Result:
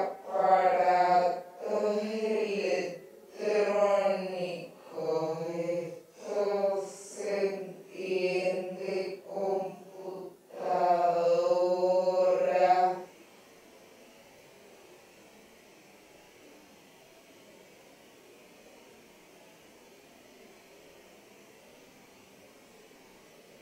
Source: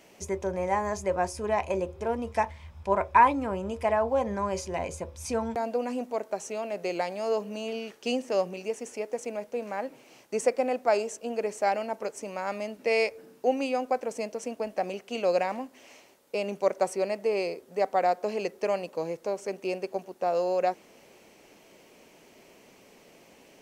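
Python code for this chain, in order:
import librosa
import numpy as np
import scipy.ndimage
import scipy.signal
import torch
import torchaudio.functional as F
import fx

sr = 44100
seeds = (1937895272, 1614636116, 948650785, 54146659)

y = fx.paulstretch(x, sr, seeds[0], factor=4.5, window_s=0.1, from_s=17.85)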